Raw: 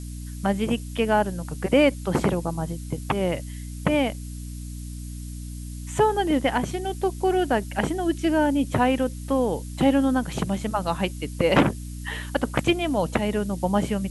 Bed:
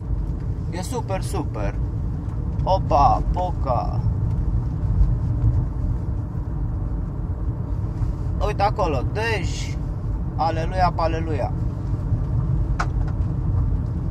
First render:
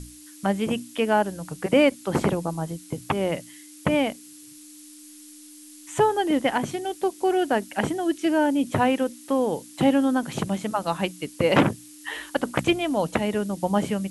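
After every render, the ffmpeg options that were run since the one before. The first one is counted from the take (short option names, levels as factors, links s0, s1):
-af "bandreject=f=60:t=h:w=6,bandreject=f=120:t=h:w=6,bandreject=f=180:t=h:w=6,bandreject=f=240:t=h:w=6"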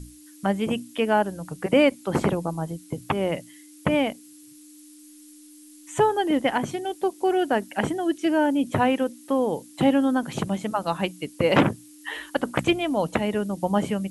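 -af "afftdn=nr=6:nf=-46"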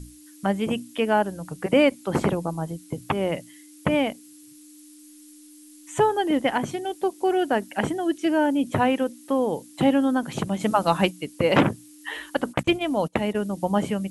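-filter_complex "[0:a]asplit=3[s0][s1][s2];[s0]afade=t=out:st=10.59:d=0.02[s3];[s1]acontrast=39,afade=t=in:st=10.59:d=0.02,afade=t=out:st=11.09:d=0.02[s4];[s2]afade=t=in:st=11.09:d=0.02[s5];[s3][s4][s5]amix=inputs=3:normalize=0,asplit=3[s6][s7][s8];[s6]afade=t=out:st=12.52:d=0.02[s9];[s7]agate=range=0.0891:threshold=0.0355:ratio=16:release=100:detection=peak,afade=t=in:st=12.52:d=0.02,afade=t=out:st=13.39:d=0.02[s10];[s8]afade=t=in:st=13.39:d=0.02[s11];[s9][s10][s11]amix=inputs=3:normalize=0"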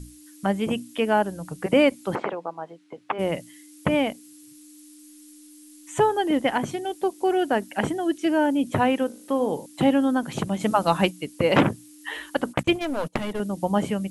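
-filter_complex "[0:a]asplit=3[s0][s1][s2];[s0]afade=t=out:st=2.14:d=0.02[s3];[s1]highpass=510,lowpass=2400,afade=t=in:st=2.14:d=0.02,afade=t=out:st=3.18:d=0.02[s4];[s2]afade=t=in:st=3.18:d=0.02[s5];[s3][s4][s5]amix=inputs=3:normalize=0,asettb=1/sr,asplit=3[s6][s7][s8];[s6]atrim=end=9.064[s9];[s7]atrim=start=9.06:end=9.66,asetpts=PTS-STARTPTS,afade=t=in:d=0.004:c=qsin,afade=t=out:st=0.596:d=0.004:c=qsin,bandreject=f=52.44:t=h:w=4,bandreject=f=104.88:t=h:w=4,bandreject=f=157.32:t=h:w=4,bandreject=f=209.76:t=h:w=4,bandreject=f=262.2:t=h:w=4,bandreject=f=314.64:t=h:w=4,bandreject=f=367.08:t=h:w=4,bandreject=f=419.52:t=h:w=4,bandreject=f=471.96:t=h:w=4,bandreject=f=524.4:t=h:w=4,bandreject=f=576.84:t=h:w=4,bandreject=f=629.28:t=h:w=4,bandreject=f=681.72:t=h:w=4,bandreject=f=734.16:t=h:w=4,bandreject=f=786.6:t=h:w=4,bandreject=f=839.04:t=h:w=4,bandreject=f=891.48:t=h:w=4,bandreject=f=943.92:t=h:w=4,bandreject=f=996.36:t=h:w=4,bandreject=f=1048.8:t=h:w=4,bandreject=f=1101.24:t=h:w=4,bandreject=f=1153.68:t=h:w=4,bandreject=f=1206.12:t=h:w=4,bandreject=f=1258.56:t=h:w=4,bandreject=f=1311:t=h:w=4,bandreject=f=1363.44:t=h:w=4,bandreject=f=1415.88:t=h:w=4,bandreject=f=1468.32:t=h:w=4,bandreject=f=1520.76:t=h:w=4,bandreject=f=1573.2:t=h:w=4,bandreject=f=1625.64:t=h:w=4[s10];[s8]atrim=start=9.656[s11];[s9][s10]acrossfade=d=0.004:c1=hsin:c2=qsin[s12];[s12][s11]acrossfade=d=0.004:c1=qsin:c2=hsin,asettb=1/sr,asplit=3[s13][s14][s15];[s13]atrim=end=12.754[s16];[s14]atrim=start=12.75:end=13.4,asetpts=PTS-STARTPTS,afade=t=in:d=0.004:c=qsin,afade=t=out:st=0.646:d=0.004:c=qsin,aeval=exprs='clip(val(0),-1,0.0299)':c=same[s17];[s15]atrim=start=13.396[s18];[s16][s17]acrossfade=d=0.004:c1=hsin:c2=qsin[s19];[s19][s18]acrossfade=d=0.004:c1=qsin:c2=hsin"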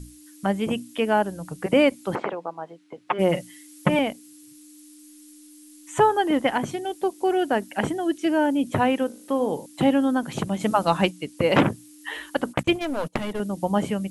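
-filter_complex "[0:a]asettb=1/sr,asplit=3[s0][s1][s2];[s0]atrim=end=3.074[s3];[s1]atrim=start=3.07:end=3.99,asetpts=PTS-STARTPTS,afade=t=in:d=0.004:c=qsin,afade=t=out:st=0.916:d=0.004:c=qsin,aecho=1:1:5.6:0.91,atrim=end_sample=40572[s4];[s2]atrim=start=3.986[s5];[s3][s4]acrossfade=d=0.004:c1=hsin:c2=qsin[s6];[s6][s5]acrossfade=d=0.004:c1=qsin:c2=hsin,asettb=1/sr,asplit=3[s7][s8][s9];[s7]atrim=end=5.934[s10];[s8]atrim=start=5.93:end=6.47,asetpts=PTS-STARTPTS,afade=t=in:d=0.004:c=qsin,afade=t=out:st=0.536:d=0.004:c=qsin,equalizer=f=1200:t=o:w=1.2:g=5.5[s11];[s9]atrim=start=6.466[s12];[s10][s11]acrossfade=d=0.004:c1=hsin:c2=qsin[s13];[s13][s12]acrossfade=d=0.004:c1=qsin:c2=hsin,asettb=1/sr,asplit=3[s14][s15][s16];[s14]atrim=end=10.854[s17];[s15]atrim=start=10.85:end=11.37,asetpts=PTS-STARTPTS,afade=t=in:d=0.004:c=qsin,afade=t=out:st=0.516:d=0.004:c=qsin,lowpass=10000[s18];[s16]atrim=start=11.366[s19];[s17][s18]acrossfade=d=0.004:c1=hsin:c2=qsin[s20];[s20][s19]acrossfade=d=0.004:c1=qsin:c2=hsin"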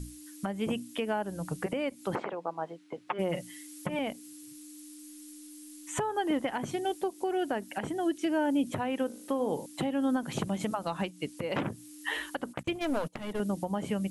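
-af "acompressor=threshold=0.0794:ratio=10,alimiter=limit=0.1:level=0:latency=1:release=399"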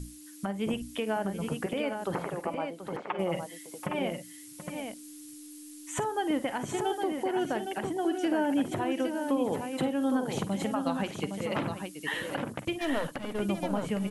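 -af "aecho=1:1:46|55|732|813:0.133|0.158|0.251|0.501"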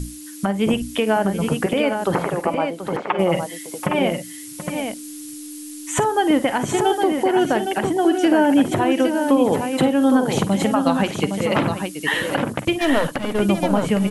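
-af "volume=3.98"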